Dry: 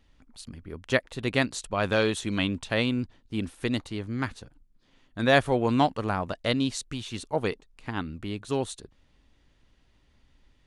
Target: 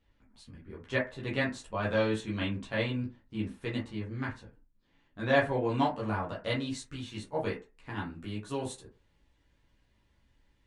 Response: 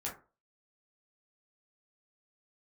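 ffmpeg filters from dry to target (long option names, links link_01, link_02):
-filter_complex "[0:a]asetnsamples=nb_out_samples=441:pad=0,asendcmd='5.69 highshelf g -3.5;7.89 highshelf g 5.5',highshelf=frequency=8200:gain=-12[link_01];[1:a]atrim=start_sample=2205,asetrate=52920,aresample=44100[link_02];[link_01][link_02]afir=irnorm=-1:irlink=0,volume=-5dB"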